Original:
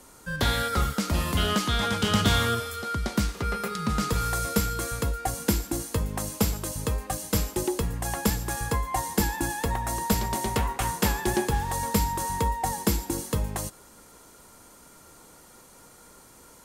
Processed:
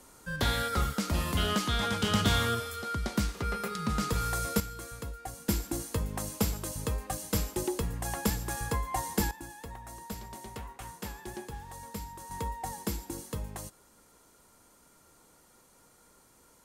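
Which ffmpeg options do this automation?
-af "asetnsamples=n=441:p=0,asendcmd='4.6 volume volume -12dB;5.49 volume volume -4.5dB;9.31 volume volume -16dB;12.31 volume volume -9.5dB',volume=-4dB"

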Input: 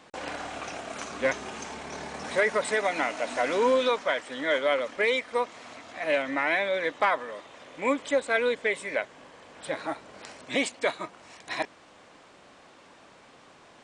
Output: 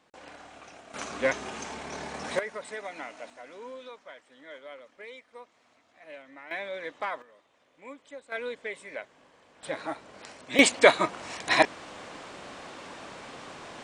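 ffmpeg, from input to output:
-af "asetnsamples=n=441:p=0,asendcmd='0.94 volume volume 0dB;2.39 volume volume -12dB;3.3 volume volume -20dB;6.51 volume volume -9dB;7.22 volume volume -19dB;8.32 volume volume -9.5dB;9.63 volume volume -2dB;10.59 volume volume 10dB',volume=-12dB"

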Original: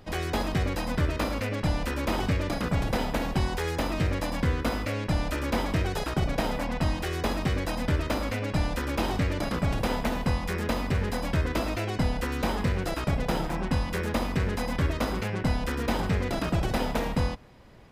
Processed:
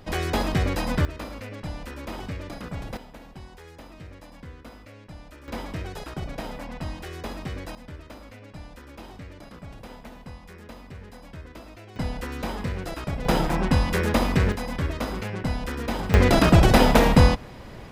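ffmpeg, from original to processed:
-af "asetnsamples=n=441:p=0,asendcmd='1.05 volume volume -7.5dB;2.97 volume volume -16.5dB;5.48 volume volume -6.5dB;7.75 volume volume -15dB;11.96 volume volume -3dB;13.25 volume volume 6dB;14.52 volume volume -1dB;16.14 volume volume 11.5dB',volume=3.5dB"

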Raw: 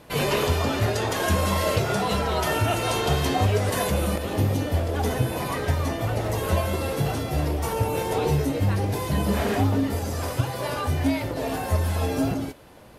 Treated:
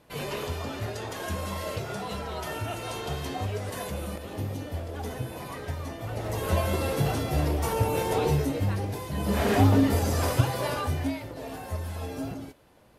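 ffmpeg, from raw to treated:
-af "volume=10.5dB,afade=t=in:st=6.02:d=0.69:silence=0.354813,afade=t=out:st=8.14:d=0.98:silence=0.398107,afade=t=in:st=9.12:d=0.53:silence=0.266073,afade=t=out:st=10.3:d=0.91:silence=0.237137"

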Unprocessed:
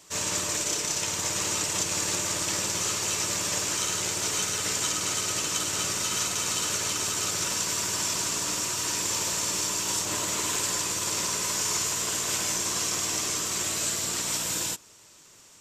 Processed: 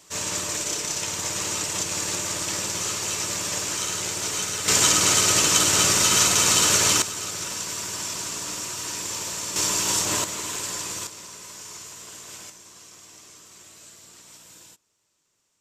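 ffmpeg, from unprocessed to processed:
-af "asetnsamples=n=441:p=0,asendcmd='4.68 volume volume 9.5dB;7.02 volume volume -2.5dB;9.56 volume volume 5dB;10.24 volume volume -2.5dB;11.07 volume volume -12.5dB;12.5 volume volume -19dB',volume=0.5dB"

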